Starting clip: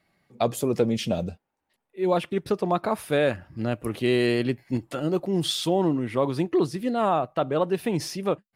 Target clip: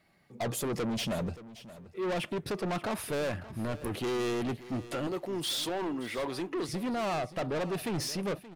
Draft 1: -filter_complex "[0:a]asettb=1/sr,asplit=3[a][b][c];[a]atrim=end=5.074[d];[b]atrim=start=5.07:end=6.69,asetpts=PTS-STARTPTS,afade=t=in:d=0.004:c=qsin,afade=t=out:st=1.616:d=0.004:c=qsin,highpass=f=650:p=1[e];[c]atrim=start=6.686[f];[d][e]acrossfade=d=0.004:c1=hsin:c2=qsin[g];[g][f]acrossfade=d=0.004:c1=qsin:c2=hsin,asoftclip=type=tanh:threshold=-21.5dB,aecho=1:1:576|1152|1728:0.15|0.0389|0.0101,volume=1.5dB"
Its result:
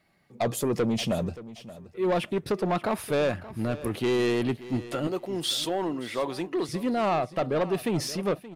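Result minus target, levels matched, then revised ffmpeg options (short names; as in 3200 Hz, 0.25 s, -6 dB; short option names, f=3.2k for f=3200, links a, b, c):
soft clip: distortion -7 dB
-filter_complex "[0:a]asettb=1/sr,asplit=3[a][b][c];[a]atrim=end=5.074[d];[b]atrim=start=5.07:end=6.69,asetpts=PTS-STARTPTS,afade=t=in:d=0.004:c=qsin,afade=t=out:st=1.616:d=0.004:c=qsin,highpass=f=650:p=1[e];[c]atrim=start=6.686[f];[d][e]acrossfade=d=0.004:c1=hsin:c2=qsin[g];[g][f]acrossfade=d=0.004:c1=qsin:c2=hsin,asoftclip=type=tanh:threshold=-31dB,aecho=1:1:576|1152|1728:0.15|0.0389|0.0101,volume=1.5dB"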